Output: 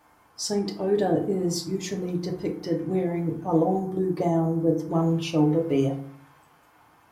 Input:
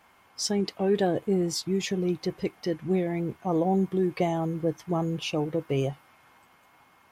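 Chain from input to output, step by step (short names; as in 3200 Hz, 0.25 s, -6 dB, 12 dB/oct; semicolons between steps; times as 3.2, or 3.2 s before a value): bell 2700 Hz -7.5 dB 1.2 oct, from 3.79 s -14 dB, from 4.91 s -3.5 dB; FDN reverb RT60 0.55 s, low-frequency decay 1.35×, high-frequency decay 0.55×, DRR 1 dB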